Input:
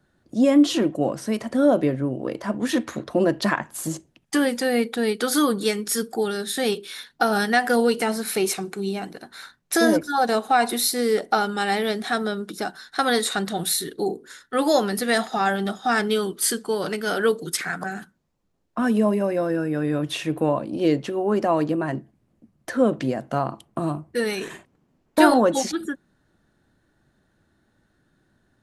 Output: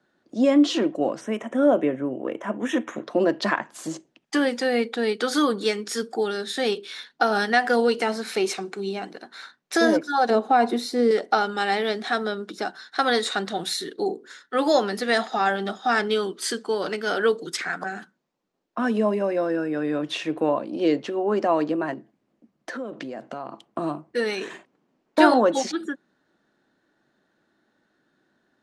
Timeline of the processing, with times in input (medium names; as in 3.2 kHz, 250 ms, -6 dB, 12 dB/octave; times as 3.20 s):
1.21–3.04 s: Butterworth band-stop 4.5 kHz, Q 1.7
10.30–11.11 s: tilt shelf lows +7.5 dB, about 810 Hz
21.93–23.64 s: compression, threshold -28 dBFS
whole clip: three-band isolator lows -23 dB, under 200 Hz, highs -23 dB, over 7.3 kHz